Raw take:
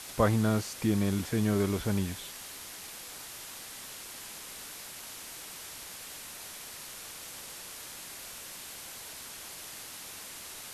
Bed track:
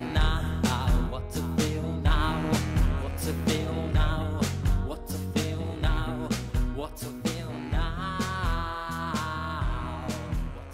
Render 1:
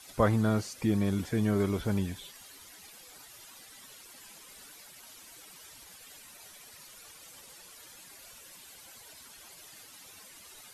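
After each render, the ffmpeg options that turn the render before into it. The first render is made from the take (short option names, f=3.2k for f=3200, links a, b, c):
-af "afftdn=nr=12:nf=-45"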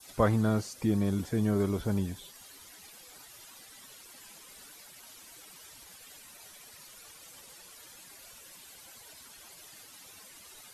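-af "adynamicequalizer=threshold=0.00178:dfrequency=2300:dqfactor=1:tfrequency=2300:tqfactor=1:attack=5:release=100:ratio=0.375:range=3:mode=cutabove:tftype=bell"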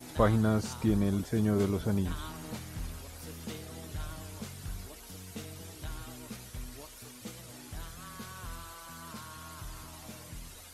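-filter_complex "[1:a]volume=-15.5dB[a];[0:a][a]amix=inputs=2:normalize=0"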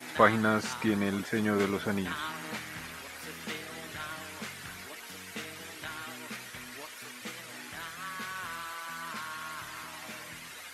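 -af "highpass=180,equalizer=f=1.9k:w=0.79:g=13.5"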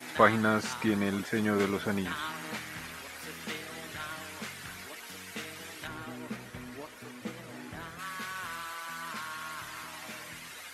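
-filter_complex "[0:a]asettb=1/sr,asplit=3[a][b][c];[a]atrim=end=5.874[d];[b]atrim=start=5.87:end=7.99,asetpts=PTS-STARTPTS,afade=t=in:d=0.004:c=qsin,afade=t=out:st=2.116:d=0.004:c=qsin,tiltshelf=f=970:g=7.5[e];[c]atrim=start=7.986[f];[d][e]acrossfade=d=0.004:c1=hsin:c2=qsin[g];[g][f]acrossfade=d=0.004:c1=qsin:c2=hsin"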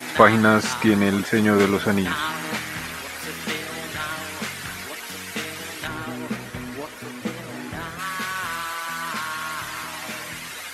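-af "volume=10.5dB,alimiter=limit=-1dB:level=0:latency=1"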